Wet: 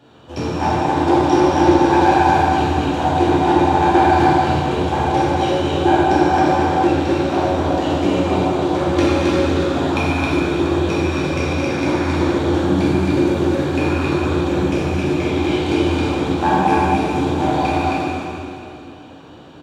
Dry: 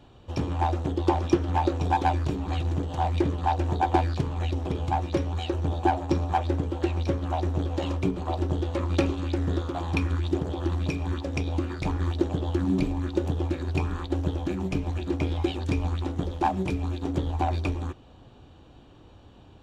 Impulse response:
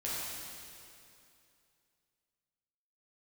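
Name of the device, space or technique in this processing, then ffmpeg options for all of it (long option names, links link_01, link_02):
stadium PA: -filter_complex "[0:a]highpass=160,equalizer=frequency=1500:width_type=o:width=0.31:gain=4.5,aecho=1:1:224.5|268.2:0.316|0.708[link_01];[1:a]atrim=start_sample=2205[link_02];[link_01][link_02]afir=irnorm=-1:irlink=0,volume=6.5dB"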